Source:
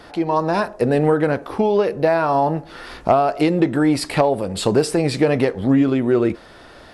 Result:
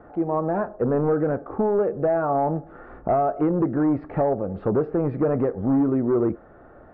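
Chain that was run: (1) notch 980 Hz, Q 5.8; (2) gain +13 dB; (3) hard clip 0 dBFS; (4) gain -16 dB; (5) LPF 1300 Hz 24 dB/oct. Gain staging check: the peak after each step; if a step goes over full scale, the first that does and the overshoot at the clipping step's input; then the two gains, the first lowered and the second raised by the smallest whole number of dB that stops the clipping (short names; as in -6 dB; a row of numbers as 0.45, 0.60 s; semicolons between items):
-4.0, +9.0, 0.0, -16.0, -14.5 dBFS; step 2, 9.0 dB; step 2 +4 dB, step 4 -7 dB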